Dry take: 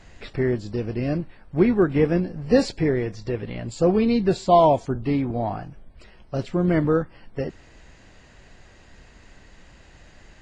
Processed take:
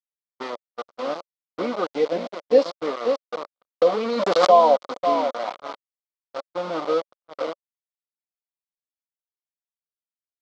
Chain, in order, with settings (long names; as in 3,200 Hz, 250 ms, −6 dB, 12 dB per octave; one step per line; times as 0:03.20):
0:06.45–0:07.02: running median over 41 samples
comb filter 4 ms, depth 60%
on a send: repeating echo 539 ms, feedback 23%, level −7 dB
on the sum: noise reduction from a noise print of the clip's start 14 dB
centre clipping without the shift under −22 dBFS
loudspeaker in its box 480–4,800 Hz, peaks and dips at 570 Hz +8 dB, 1,200 Hz +7 dB, 1,700 Hz −9 dB, 2,600 Hz −7 dB
noise gate −32 dBFS, range −58 dB
0:01.84–0:02.59: parametric band 1,200 Hz −11 dB 0.41 octaves
0:03.74–0:04.54: background raised ahead of every attack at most 34 dB per second
level −2 dB